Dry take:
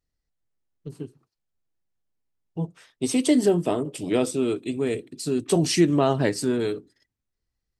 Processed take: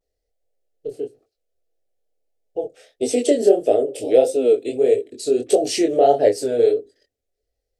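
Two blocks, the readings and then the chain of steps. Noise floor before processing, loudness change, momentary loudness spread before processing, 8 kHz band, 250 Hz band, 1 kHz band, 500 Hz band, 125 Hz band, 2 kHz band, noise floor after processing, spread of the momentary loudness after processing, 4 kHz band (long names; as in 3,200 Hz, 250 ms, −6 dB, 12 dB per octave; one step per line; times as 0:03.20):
−83 dBFS, +5.5 dB, 19 LU, +1.0 dB, −2.0 dB, +7.5 dB, +9.5 dB, below −10 dB, −3.0 dB, −80 dBFS, 16 LU, 0.0 dB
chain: flat-topped bell 600 Hz +15.5 dB 1.2 octaves
in parallel at +1 dB: downward compressor, threshold −19 dBFS, peak gain reduction 14 dB
on the sum: phaser with its sweep stopped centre 400 Hz, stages 4
chorus effect 1.6 Hz, delay 19 ms, depth 7 ms
pitch vibrato 0.53 Hz 48 cents
level −1 dB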